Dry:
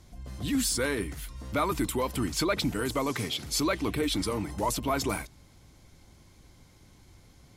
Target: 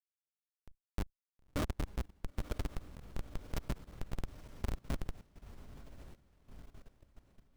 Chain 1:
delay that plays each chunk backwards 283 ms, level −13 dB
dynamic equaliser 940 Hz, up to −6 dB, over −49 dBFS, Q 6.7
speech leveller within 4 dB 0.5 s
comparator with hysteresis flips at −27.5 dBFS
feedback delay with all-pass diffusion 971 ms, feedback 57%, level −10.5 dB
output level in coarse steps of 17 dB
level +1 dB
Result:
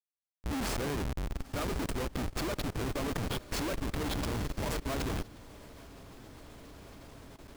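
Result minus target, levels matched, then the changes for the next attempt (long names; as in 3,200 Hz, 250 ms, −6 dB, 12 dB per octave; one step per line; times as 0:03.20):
comparator with hysteresis: distortion −17 dB
change: comparator with hysteresis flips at −20.5 dBFS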